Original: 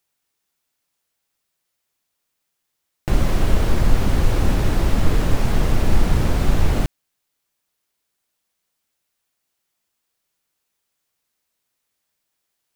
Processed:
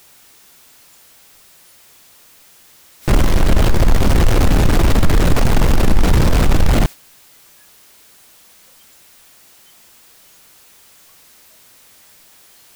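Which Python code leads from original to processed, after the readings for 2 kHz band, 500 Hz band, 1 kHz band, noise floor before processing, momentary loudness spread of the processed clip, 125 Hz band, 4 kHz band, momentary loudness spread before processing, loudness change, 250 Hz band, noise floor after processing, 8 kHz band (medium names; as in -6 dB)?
+6.5 dB, +6.0 dB, +6.5 dB, -77 dBFS, 3 LU, +5.0 dB, +7.0 dB, 3 LU, +5.5 dB, +6.0 dB, -48 dBFS, +7.5 dB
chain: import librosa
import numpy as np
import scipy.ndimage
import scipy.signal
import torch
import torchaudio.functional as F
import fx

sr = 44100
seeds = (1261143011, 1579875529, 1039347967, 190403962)

y = fx.noise_reduce_blind(x, sr, reduce_db=14)
y = fx.power_curve(y, sr, exponent=0.5)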